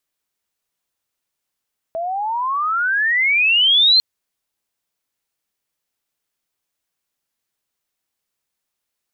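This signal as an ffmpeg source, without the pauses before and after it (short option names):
-f lavfi -i "aevalsrc='pow(10,(-9+12*(t/2.05-1))/20)*sin(2*PI*648*2.05/(32.5*log(2)/12)*(exp(32.5*log(2)/12*t/2.05)-1))':d=2.05:s=44100"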